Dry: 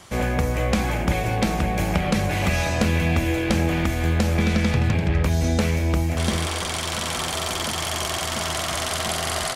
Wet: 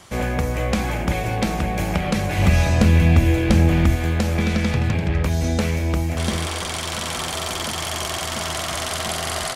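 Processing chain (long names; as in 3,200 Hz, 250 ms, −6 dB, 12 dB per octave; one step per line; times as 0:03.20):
0:02.38–0:03.96: low-shelf EQ 220 Hz +9.5 dB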